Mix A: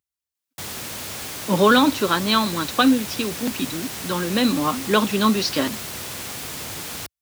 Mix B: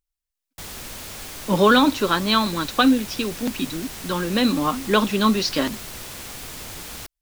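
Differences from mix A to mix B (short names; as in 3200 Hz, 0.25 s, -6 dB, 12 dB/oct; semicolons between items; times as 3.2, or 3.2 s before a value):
background -4.0 dB; master: remove HPF 76 Hz 24 dB/oct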